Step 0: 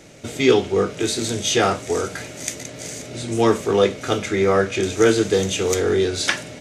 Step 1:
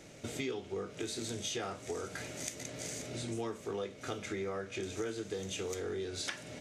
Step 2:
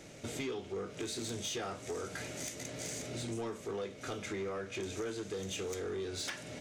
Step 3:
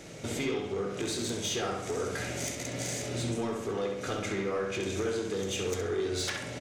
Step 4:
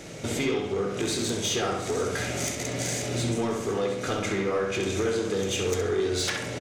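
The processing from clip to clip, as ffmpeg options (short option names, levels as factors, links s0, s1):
-af "acompressor=threshold=0.0398:ratio=6,volume=0.398"
-af "asoftclip=type=tanh:threshold=0.0224,volume=1.19"
-filter_complex "[0:a]asplit=2[s0][s1];[s1]adelay=66,lowpass=f=3500:p=1,volume=0.708,asplit=2[s2][s3];[s3]adelay=66,lowpass=f=3500:p=1,volume=0.54,asplit=2[s4][s5];[s5]adelay=66,lowpass=f=3500:p=1,volume=0.54,asplit=2[s6][s7];[s7]adelay=66,lowpass=f=3500:p=1,volume=0.54,asplit=2[s8][s9];[s9]adelay=66,lowpass=f=3500:p=1,volume=0.54,asplit=2[s10][s11];[s11]adelay=66,lowpass=f=3500:p=1,volume=0.54,asplit=2[s12][s13];[s13]adelay=66,lowpass=f=3500:p=1,volume=0.54[s14];[s0][s2][s4][s6][s8][s10][s12][s14]amix=inputs=8:normalize=0,volume=1.78"
-af "aecho=1:1:718:0.178,volume=1.78"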